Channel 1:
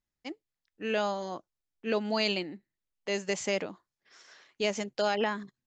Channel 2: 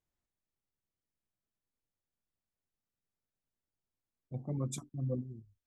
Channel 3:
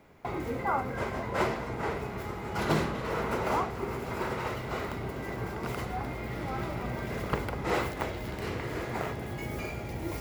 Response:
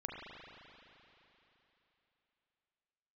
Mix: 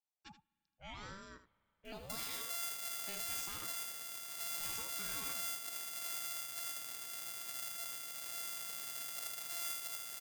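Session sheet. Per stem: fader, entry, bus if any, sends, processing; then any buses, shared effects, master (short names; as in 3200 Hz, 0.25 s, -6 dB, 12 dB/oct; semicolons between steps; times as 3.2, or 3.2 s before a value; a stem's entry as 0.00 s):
-15.5 dB, 0.00 s, bus A, send -24 dB, echo send -11.5 dB, high shelf 3000 Hz +12 dB; ring modulator with a swept carrier 510 Hz, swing 60%, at 0.8 Hz
off
-1.5 dB, 1.85 s, no bus, no send, echo send -4.5 dB, sample sorter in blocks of 64 samples; differentiator
bus A: 0.0 dB, limiter -37.5 dBFS, peak gain reduction 12 dB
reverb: on, RT60 3.4 s, pre-delay 35 ms
echo: echo 79 ms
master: limiter -21 dBFS, peak gain reduction 8.5 dB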